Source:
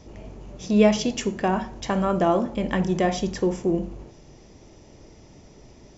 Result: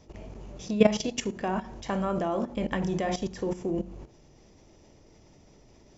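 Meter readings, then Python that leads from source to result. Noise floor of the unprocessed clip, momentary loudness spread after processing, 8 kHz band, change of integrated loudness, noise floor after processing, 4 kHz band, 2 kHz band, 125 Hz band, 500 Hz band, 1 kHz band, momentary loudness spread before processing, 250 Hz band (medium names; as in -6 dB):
-50 dBFS, 20 LU, no reading, -6.0 dB, -57 dBFS, -4.5 dB, -5.5 dB, -6.0 dB, -5.5 dB, -6.5 dB, 18 LU, -6.0 dB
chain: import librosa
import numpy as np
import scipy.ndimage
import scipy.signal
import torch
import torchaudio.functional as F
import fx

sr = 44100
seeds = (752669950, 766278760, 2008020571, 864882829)

y = fx.hum_notches(x, sr, base_hz=60, count=7)
y = fx.level_steps(y, sr, step_db=14)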